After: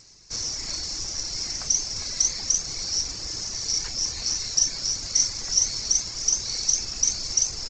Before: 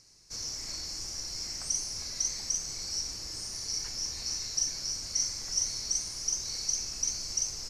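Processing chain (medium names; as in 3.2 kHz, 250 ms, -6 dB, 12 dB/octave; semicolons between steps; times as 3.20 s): reverb removal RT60 0.58 s; on a send: delay 771 ms -20 dB; on the sum: trim +9 dB; G.722 64 kbps 16 kHz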